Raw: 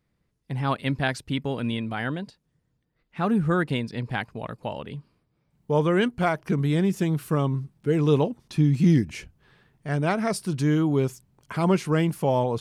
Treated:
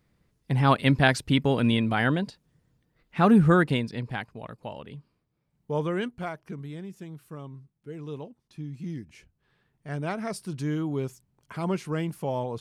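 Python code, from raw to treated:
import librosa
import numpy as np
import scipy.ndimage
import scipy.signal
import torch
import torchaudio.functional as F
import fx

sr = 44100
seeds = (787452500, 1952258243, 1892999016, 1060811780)

y = fx.gain(x, sr, db=fx.line((3.42, 5.0), (4.31, -6.0), (5.85, -6.0), (6.85, -17.0), (8.95, -17.0), (9.92, -7.0)))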